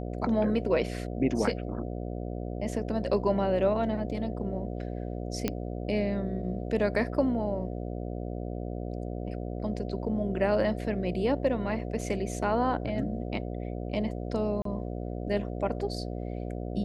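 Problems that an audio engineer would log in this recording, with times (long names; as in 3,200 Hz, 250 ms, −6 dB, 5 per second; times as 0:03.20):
mains buzz 60 Hz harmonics 12 −35 dBFS
0:05.48: click −13 dBFS
0:12.01: drop-out 3 ms
0:14.62–0:14.65: drop-out 33 ms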